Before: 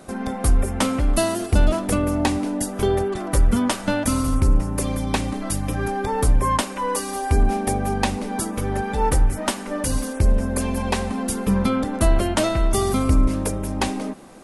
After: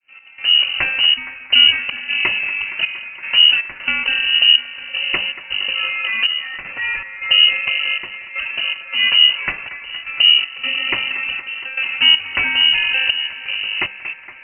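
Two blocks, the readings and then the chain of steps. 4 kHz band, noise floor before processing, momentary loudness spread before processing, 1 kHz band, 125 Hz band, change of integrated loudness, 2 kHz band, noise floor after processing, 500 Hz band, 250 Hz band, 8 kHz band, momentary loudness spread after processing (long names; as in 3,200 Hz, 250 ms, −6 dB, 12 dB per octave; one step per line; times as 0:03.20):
+23.0 dB, −32 dBFS, 5 LU, −9.0 dB, below −20 dB, +7.5 dB, +15.5 dB, −37 dBFS, −17.0 dB, below −20 dB, below −40 dB, 13 LU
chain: fade in at the beginning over 0.70 s
in parallel at −10 dB: dead-zone distortion −39.5 dBFS
on the sum: gate pattern "x.xxxx..x" 79 BPM −12 dB
delay with a band-pass on its return 233 ms, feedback 78%, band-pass 1,100 Hz, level −12 dB
voice inversion scrambler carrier 2,900 Hz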